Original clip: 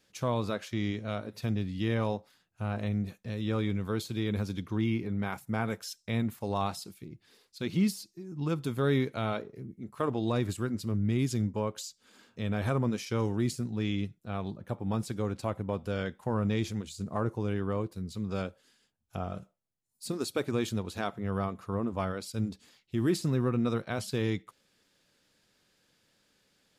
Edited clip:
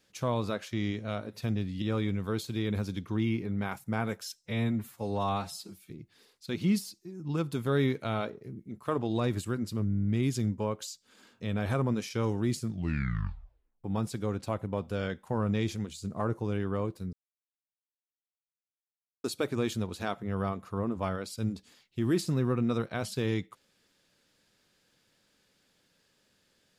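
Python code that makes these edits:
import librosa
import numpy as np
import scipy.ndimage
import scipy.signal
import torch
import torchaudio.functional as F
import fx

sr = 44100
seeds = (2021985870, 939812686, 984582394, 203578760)

y = fx.edit(x, sr, fx.cut(start_s=1.82, length_s=1.61),
    fx.stretch_span(start_s=6.04, length_s=0.98, factor=1.5),
    fx.stutter(start_s=11.01, slice_s=0.02, count=9),
    fx.tape_stop(start_s=13.55, length_s=1.25),
    fx.silence(start_s=18.09, length_s=2.11), tone=tone)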